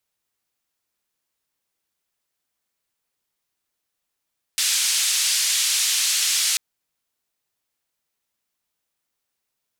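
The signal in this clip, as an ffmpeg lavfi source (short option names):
-f lavfi -i "anoisesrc=c=white:d=1.99:r=44100:seed=1,highpass=f=2900,lowpass=f=8200,volume=-10dB"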